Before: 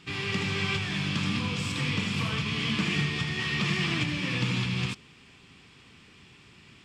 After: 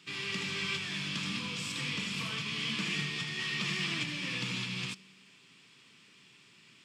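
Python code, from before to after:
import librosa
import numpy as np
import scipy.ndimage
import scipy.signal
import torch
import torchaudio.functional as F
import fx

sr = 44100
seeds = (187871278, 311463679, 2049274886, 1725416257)

y = scipy.signal.sosfilt(scipy.signal.butter(4, 130.0, 'highpass', fs=sr, output='sos'), x)
y = fx.high_shelf(y, sr, hz=2100.0, db=9.0)
y = fx.notch(y, sr, hz=770.0, q=12.0)
y = fx.comb_fb(y, sr, f0_hz=190.0, decay_s=1.4, harmonics='all', damping=0.0, mix_pct=40)
y = y * 10.0 ** (-5.0 / 20.0)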